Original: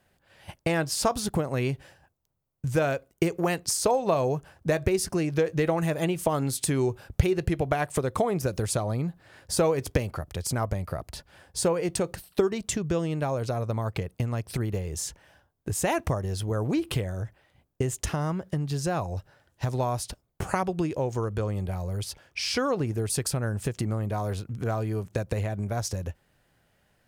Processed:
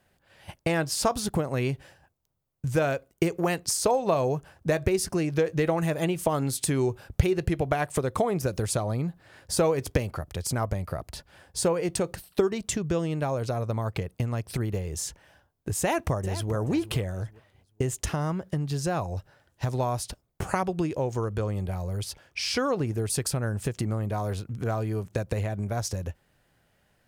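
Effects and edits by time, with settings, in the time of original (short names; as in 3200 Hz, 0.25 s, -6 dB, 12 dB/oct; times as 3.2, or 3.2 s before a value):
15.8–16.53 echo throw 0.43 s, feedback 25%, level -13 dB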